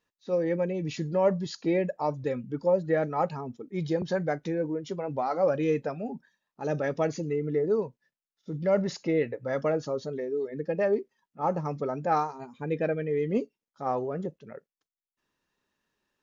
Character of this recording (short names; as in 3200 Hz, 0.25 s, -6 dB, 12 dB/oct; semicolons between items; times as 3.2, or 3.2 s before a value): noise floor -94 dBFS; spectral tilt -4.5 dB/oct